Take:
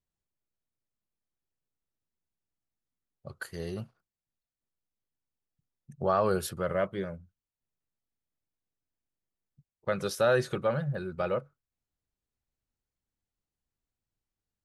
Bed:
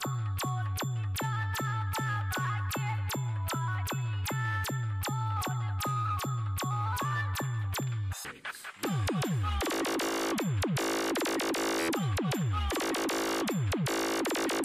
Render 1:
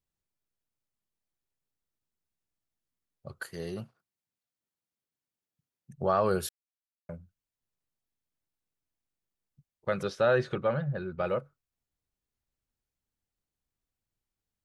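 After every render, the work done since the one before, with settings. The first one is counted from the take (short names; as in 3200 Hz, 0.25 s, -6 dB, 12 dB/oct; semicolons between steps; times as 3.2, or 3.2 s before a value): 3.44–5.91 HPF 110 Hz; 6.49–7.09 mute; 10.03–11.25 LPF 3800 Hz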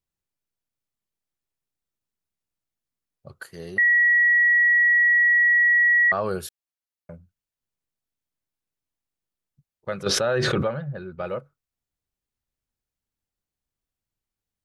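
3.78–6.12 bleep 1920 Hz -14.5 dBFS; 10.06–10.68 fast leveller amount 100%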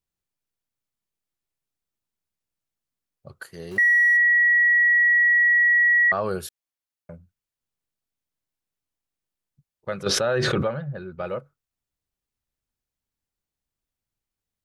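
3.71–4.17 zero-crossing step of -38.5 dBFS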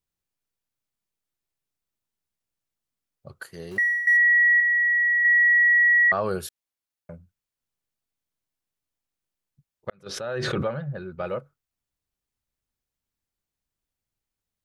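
3.44–4.07 fade out equal-power, to -15 dB; 4.6–5.25 notch comb 470 Hz; 9.9–10.87 fade in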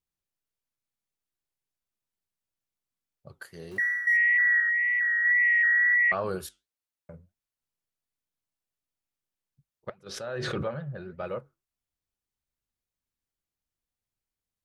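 flange 1.6 Hz, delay 1.7 ms, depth 9.3 ms, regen -79%; wow and flutter 23 cents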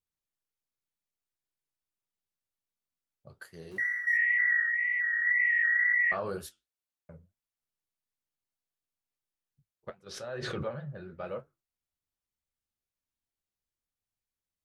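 vibrato 13 Hz 16 cents; flange 2 Hz, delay 9.8 ms, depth 6.3 ms, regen -49%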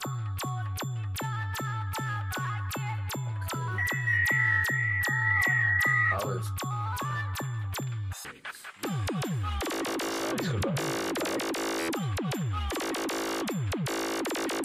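add bed -0.5 dB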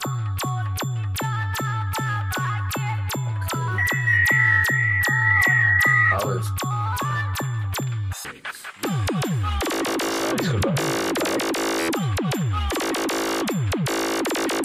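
gain +7.5 dB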